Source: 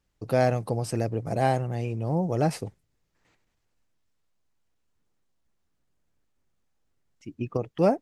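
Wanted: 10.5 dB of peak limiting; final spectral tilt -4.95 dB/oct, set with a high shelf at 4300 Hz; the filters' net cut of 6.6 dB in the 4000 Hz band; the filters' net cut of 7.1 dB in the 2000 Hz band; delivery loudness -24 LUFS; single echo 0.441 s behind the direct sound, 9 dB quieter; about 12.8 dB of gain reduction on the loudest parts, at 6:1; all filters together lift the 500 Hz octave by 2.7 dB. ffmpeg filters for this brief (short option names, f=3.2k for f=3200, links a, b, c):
-af "equalizer=f=500:t=o:g=4,equalizer=f=2k:t=o:g=-8.5,equalizer=f=4k:t=o:g=-4.5,highshelf=f=4.3k:g=-3.5,acompressor=threshold=-29dB:ratio=6,alimiter=level_in=2.5dB:limit=-24dB:level=0:latency=1,volume=-2.5dB,aecho=1:1:441:0.355,volume=13.5dB"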